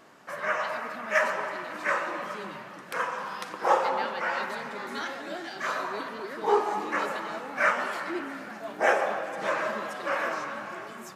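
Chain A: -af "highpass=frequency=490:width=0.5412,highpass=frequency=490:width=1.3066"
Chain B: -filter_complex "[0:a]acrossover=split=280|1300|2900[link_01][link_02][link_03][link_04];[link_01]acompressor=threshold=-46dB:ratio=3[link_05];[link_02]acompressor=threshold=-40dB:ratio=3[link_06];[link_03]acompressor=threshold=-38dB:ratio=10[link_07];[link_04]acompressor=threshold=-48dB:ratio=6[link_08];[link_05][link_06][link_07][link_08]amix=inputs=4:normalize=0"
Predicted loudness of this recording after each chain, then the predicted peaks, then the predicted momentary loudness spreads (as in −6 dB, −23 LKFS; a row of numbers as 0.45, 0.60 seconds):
−30.0, −36.5 LKFS; −9.0, −20.5 dBFS; 13, 4 LU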